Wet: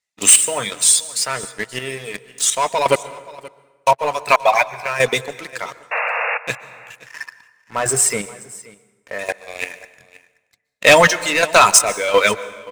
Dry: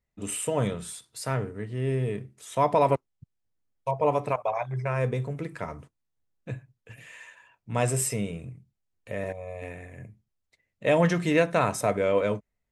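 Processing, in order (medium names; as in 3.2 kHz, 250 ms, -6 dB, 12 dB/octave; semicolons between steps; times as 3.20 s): frequency weighting ITU-R 468; reverb removal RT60 1.3 s; 6.97–9.19 s: resonant high shelf 2.2 kHz -14 dB, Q 1.5; waveshaping leveller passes 3; square tremolo 1.4 Hz, depth 65%, duty 50%; 5.91–6.38 s: painted sound noise 450–2800 Hz -28 dBFS; delay 527 ms -20.5 dB; plate-style reverb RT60 1.3 s, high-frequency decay 0.65×, pre-delay 110 ms, DRR 16.5 dB; trim +7 dB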